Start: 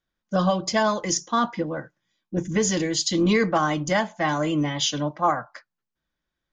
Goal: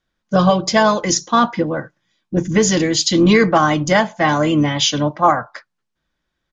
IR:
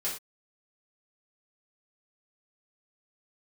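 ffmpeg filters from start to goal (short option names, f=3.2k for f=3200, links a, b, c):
-filter_complex "[0:a]asplit=2[a][b];[b]asetrate=33038,aresample=44100,atempo=1.33484,volume=-18dB[c];[a][c]amix=inputs=2:normalize=0,lowpass=7.5k,volume=8dB"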